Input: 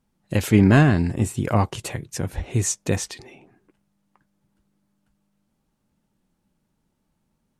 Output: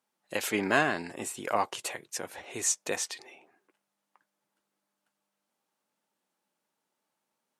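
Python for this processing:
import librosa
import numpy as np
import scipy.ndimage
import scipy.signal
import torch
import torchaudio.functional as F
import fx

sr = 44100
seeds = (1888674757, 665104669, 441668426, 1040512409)

y = scipy.signal.sosfilt(scipy.signal.butter(2, 550.0, 'highpass', fs=sr, output='sos'), x)
y = y * 10.0 ** (-2.5 / 20.0)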